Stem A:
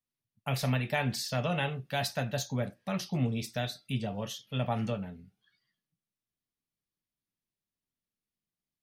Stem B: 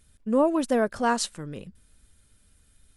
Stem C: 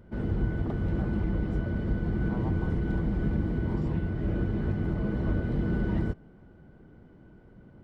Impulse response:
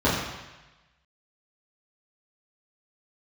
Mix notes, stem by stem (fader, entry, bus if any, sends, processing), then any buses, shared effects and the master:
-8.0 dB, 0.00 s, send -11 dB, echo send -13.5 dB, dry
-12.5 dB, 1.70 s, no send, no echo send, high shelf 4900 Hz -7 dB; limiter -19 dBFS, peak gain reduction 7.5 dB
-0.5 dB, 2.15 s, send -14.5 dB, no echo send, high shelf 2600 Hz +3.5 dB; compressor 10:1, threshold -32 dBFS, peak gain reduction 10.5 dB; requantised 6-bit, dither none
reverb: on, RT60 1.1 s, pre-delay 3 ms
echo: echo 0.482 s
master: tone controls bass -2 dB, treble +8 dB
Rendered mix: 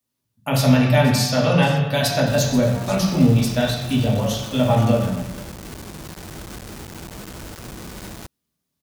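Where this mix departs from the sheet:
stem A -8.0 dB -> +3.5 dB; stem C: send off

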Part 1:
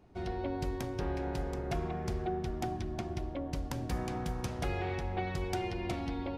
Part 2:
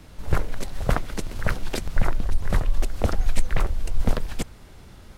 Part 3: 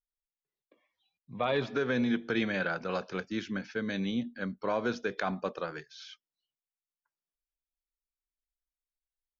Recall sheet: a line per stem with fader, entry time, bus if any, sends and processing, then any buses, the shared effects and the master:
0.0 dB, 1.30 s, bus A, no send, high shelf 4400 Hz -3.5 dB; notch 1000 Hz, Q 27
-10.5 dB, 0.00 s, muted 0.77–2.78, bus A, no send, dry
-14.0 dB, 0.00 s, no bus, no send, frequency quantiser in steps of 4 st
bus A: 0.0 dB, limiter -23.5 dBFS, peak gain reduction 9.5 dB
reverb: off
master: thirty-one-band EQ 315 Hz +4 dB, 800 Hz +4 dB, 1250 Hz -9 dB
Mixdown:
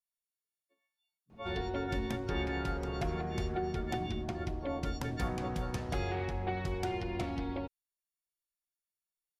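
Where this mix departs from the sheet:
stem 1: missing notch 1000 Hz, Q 27; stem 2: muted; master: missing thirty-one-band EQ 315 Hz +4 dB, 800 Hz +4 dB, 1250 Hz -9 dB

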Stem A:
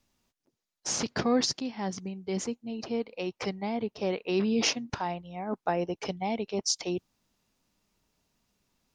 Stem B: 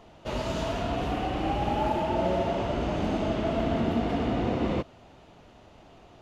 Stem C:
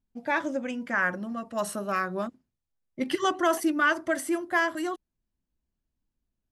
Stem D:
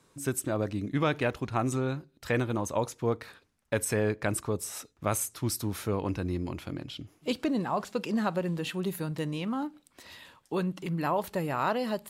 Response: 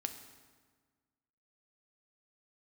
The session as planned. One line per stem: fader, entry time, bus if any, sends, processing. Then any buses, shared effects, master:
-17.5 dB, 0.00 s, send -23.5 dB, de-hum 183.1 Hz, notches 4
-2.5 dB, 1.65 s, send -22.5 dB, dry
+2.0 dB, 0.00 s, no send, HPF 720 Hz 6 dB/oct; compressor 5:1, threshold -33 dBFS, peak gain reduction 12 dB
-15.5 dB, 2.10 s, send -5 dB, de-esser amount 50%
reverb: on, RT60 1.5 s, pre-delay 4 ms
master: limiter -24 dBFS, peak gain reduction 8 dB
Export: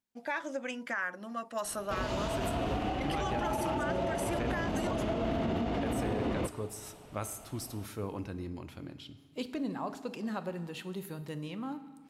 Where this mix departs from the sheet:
stem A: muted; reverb return +9.5 dB

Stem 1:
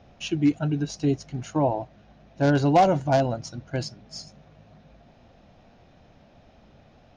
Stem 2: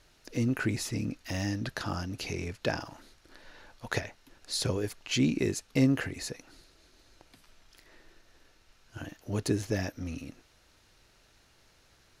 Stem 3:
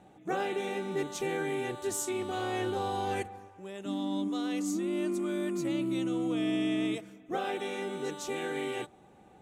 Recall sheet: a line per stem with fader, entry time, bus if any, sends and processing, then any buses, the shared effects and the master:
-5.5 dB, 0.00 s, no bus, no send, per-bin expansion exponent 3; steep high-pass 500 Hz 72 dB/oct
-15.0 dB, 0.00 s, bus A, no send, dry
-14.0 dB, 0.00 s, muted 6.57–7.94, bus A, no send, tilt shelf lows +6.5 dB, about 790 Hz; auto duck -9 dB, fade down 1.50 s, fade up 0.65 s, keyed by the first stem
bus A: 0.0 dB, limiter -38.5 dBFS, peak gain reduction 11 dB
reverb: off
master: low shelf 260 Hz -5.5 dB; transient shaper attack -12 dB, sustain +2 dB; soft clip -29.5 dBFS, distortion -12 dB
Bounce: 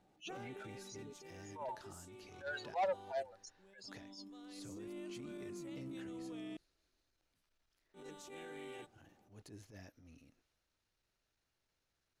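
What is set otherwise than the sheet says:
stem 2 -15.0 dB -> -22.0 dB; stem 3: missing tilt shelf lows +6.5 dB, about 790 Hz; master: missing low shelf 260 Hz -5.5 dB

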